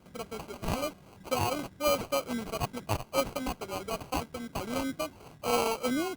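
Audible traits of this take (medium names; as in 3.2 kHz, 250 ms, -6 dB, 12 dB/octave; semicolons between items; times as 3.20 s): aliases and images of a low sample rate 1.8 kHz, jitter 0%; Opus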